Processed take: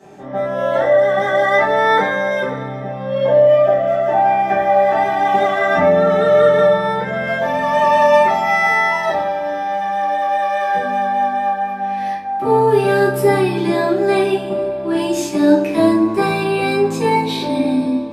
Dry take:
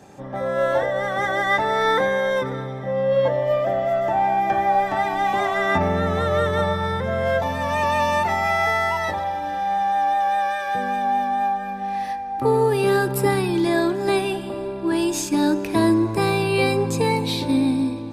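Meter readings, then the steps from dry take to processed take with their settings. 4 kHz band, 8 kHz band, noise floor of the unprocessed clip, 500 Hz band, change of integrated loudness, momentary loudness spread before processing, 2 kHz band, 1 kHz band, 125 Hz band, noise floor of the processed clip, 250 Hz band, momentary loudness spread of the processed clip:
+1.5 dB, n/a, -30 dBFS, +7.5 dB, +5.5 dB, 6 LU, +5.0 dB, +5.0 dB, 0.0 dB, -26 dBFS, +4.0 dB, 9 LU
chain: HPF 230 Hz 6 dB/oct; high shelf 5000 Hz -6.5 dB; shoebox room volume 45 m³, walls mixed, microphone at 1.5 m; gain -3 dB

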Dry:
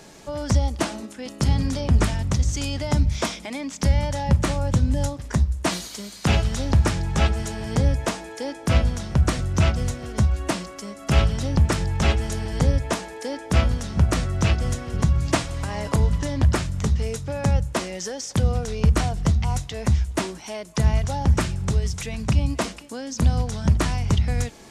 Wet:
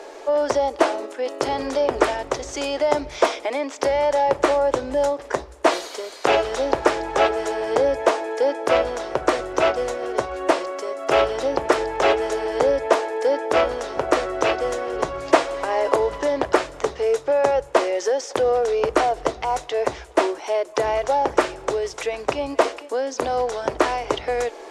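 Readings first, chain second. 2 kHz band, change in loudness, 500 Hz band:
+4.5 dB, +1.5 dB, +12.0 dB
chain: inverse Chebyshev high-pass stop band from 210 Hz, stop band 40 dB; tilt -4.5 dB/oct; in parallel at -8.5 dB: soft clip -26 dBFS, distortion -9 dB; on the sum: gain +7 dB

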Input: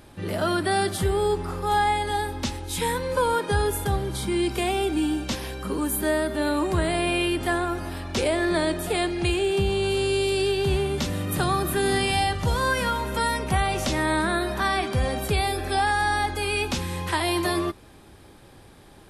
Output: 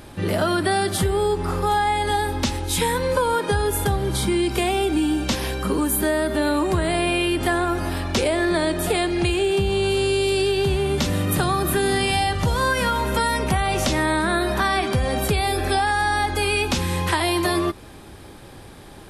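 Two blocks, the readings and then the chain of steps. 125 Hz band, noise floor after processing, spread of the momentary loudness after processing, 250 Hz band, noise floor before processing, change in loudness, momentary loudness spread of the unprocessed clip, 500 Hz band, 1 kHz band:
+3.5 dB, -42 dBFS, 3 LU, +3.5 dB, -49 dBFS, +3.5 dB, 5 LU, +3.0 dB, +2.5 dB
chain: compressor, threshold -25 dBFS, peak gain reduction 7.5 dB; gain +7.5 dB

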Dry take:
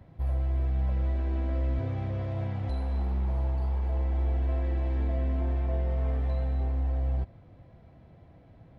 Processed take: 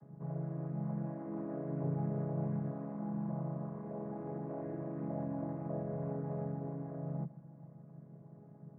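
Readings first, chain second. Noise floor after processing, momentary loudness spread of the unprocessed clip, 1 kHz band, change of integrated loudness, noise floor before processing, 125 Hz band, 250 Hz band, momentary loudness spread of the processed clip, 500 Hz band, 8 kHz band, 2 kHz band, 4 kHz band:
-56 dBFS, 3 LU, -4.5 dB, -9.5 dB, -54 dBFS, -10.5 dB, +1.0 dB, 17 LU, -2.5 dB, n/a, -13.0 dB, under -25 dB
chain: chord vocoder minor triad, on C#3; LPF 1600 Hz 24 dB/oct

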